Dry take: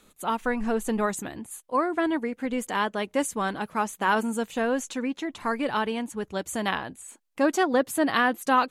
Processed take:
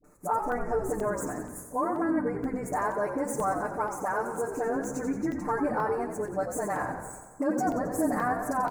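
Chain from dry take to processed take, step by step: median filter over 3 samples; on a send at -12.5 dB: low shelf 240 Hz +10.5 dB + reverb RT60 1.5 s, pre-delay 3 ms; on the sum: limiter -16.5 dBFS, peak gain reduction 7.5 dB; Butterworth band-stop 3300 Hz, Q 0.77; compressor 2.5:1, threshold -28 dBFS, peak gain reduction 5 dB; bell 710 Hz +5 dB 0.83 oct; comb 6.7 ms, depth 93%; dispersion highs, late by 43 ms, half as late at 610 Hz; frequency-shifting echo 89 ms, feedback 53%, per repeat -65 Hz, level -8 dB; crackling interface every 0.48 s, samples 64, zero, from 0.52; gain -3 dB

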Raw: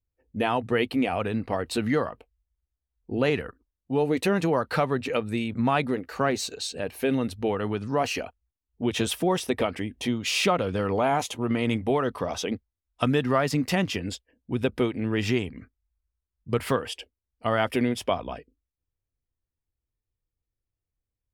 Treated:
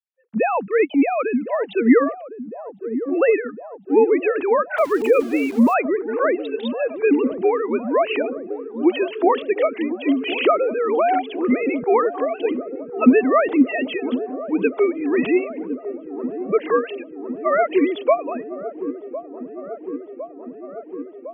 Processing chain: sine-wave speech; 4.78–5.74 sample gate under -40.5 dBFS; dark delay 1.057 s, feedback 76%, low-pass 690 Hz, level -11.5 dB; 0.67–1.22 transient shaper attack -6 dB, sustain -2 dB; gain +7 dB

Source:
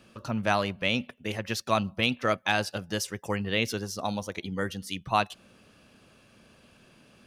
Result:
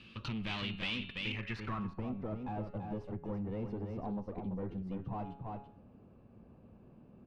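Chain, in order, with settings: notch 3300 Hz, Q 16; de-hum 139.1 Hz, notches 32; tube stage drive 31 dB, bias 0.55; fifteen-band EQ 630 Hz -11 dB, 1600 Hz -6 dB, 6300 Hz -4 dB; echo 0.336 s -6.5 dB; low-pass sweep 3200 Hz -> 680 Hz, 1.22–2.12; bell 580 Hz -6 dB 3 oct; compressor 2.5:1, threshold -44 dBFS, peak gain reduction 8.5 dB; gain +6.5 dB

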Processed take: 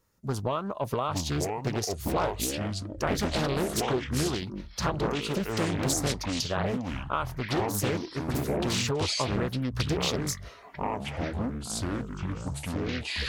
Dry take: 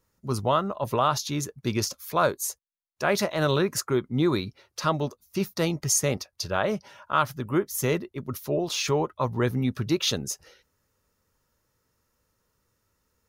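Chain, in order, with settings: compressor, threshold -27 dBFS, peak gain reduction 10 dB; echoes that change speed 0.746 s, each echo -6 st, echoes 3; Doppler distortion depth 0.87 ms; gain +1 dB

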